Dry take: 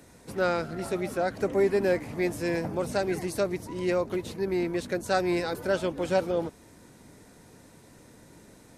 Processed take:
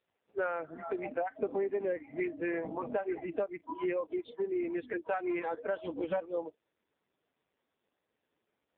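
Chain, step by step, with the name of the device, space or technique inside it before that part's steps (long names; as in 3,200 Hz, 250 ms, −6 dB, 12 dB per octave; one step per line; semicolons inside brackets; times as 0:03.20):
noise reduction from a noise print of the clip's start 29 dB
voicemail (band-pass filter 350–2,700 Hz; downward compressor 6 to 1, threshold −37 dBFS, peak gain reduction 15 dB; level +7 dB; AMR narrowband 5.15 kbit/s 8,000 Hz)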